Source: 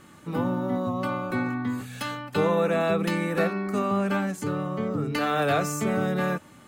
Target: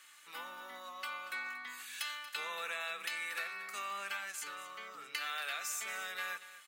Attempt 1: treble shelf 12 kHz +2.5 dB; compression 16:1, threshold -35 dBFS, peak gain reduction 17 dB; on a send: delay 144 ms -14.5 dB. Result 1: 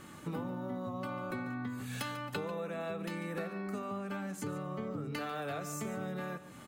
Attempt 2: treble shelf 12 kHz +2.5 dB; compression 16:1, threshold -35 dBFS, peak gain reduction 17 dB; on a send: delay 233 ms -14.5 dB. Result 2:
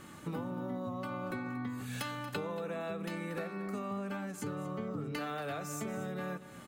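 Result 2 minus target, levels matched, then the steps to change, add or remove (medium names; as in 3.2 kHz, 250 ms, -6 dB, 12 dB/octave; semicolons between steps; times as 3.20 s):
2 kHz band -7.0 dB
add first: Chebyshev high-pass 2.2 kHz, order 2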